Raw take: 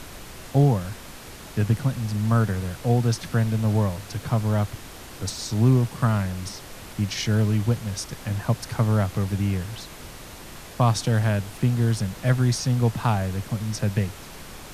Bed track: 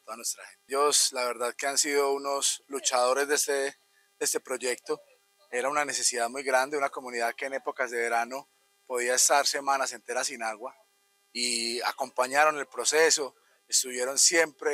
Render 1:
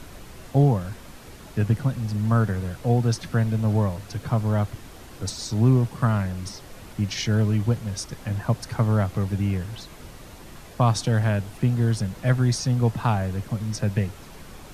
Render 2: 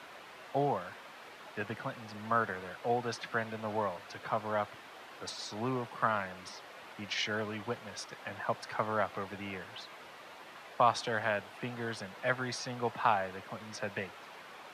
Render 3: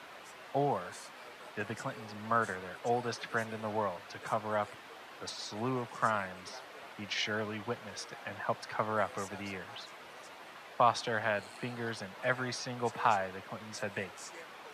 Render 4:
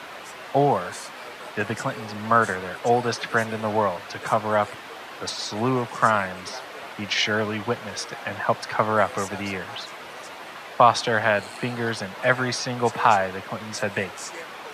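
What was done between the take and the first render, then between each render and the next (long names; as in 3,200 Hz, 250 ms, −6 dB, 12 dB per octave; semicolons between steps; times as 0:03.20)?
broadband denoise 6 dB, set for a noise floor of −41 dBFS
high-pass filter 190 Hz 12 dB per octave; three-way crossover with the lows and the highs turned down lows −16 dB, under 540 Hz, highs −16 dB, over 3,800 Hz
mix in bed track −28 dB
level +11.5 dB; brickwall limiter −3 dBFS, peak gain reduction 2 dB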